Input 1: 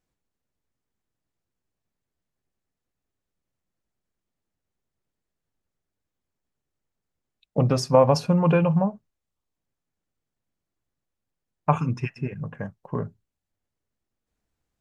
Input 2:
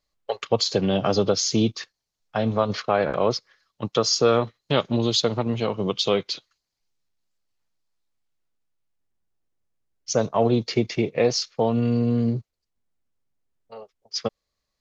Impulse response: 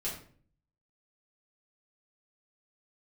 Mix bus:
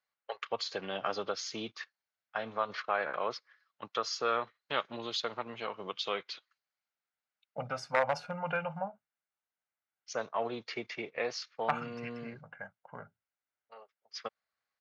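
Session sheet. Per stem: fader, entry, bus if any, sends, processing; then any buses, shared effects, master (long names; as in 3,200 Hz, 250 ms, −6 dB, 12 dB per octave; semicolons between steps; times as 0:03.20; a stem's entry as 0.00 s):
−3.5 dB, 0.00 s, no send, comb filter 1.4 ms, depth 71%; wave folding −8.5 dBFS
−3.0 dB, 0.00 s, no send, no processing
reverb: not used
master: resonant band-pass 1,600 Hz, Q 1.3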